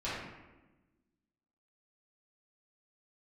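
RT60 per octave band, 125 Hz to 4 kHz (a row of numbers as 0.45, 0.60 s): 1.5, 1.7, 1.2, 1.0, 1.0, 0.70 s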